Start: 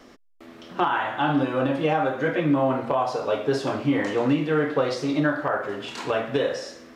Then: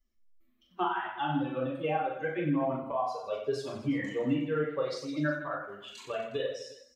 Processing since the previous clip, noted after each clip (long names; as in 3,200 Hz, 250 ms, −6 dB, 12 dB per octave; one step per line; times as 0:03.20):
spectral dynamics exaggerated over time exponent 2
on a send: reverse bouncing-ball delay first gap 40 ms, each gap 1.3×, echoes 5
on the sum: level −5.5 dB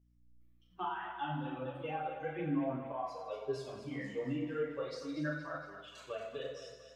multi-voice chorus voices 2, 0.36 Hz, delay 11 ms, depth 5 ms
echo with a time of its own for lows and highs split 500 Hz, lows 98 ms, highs 232 ms, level −10 dB
mains hum 60 Hz, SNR 30 dB
level −5 dB